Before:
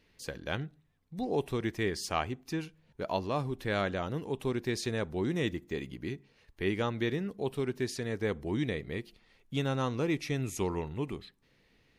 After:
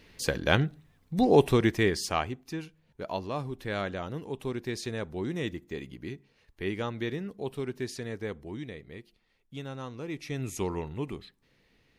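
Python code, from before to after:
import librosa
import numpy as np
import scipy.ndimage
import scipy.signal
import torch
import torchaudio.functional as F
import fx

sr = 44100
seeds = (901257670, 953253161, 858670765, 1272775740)

y = fx.gain(x, sr, db=fx.line((1.46, 11.0), (2.51, -1.5), (8.05, -1.5), (8.66, -8.0), (10.02, -8.0), (10.47, 0.5)))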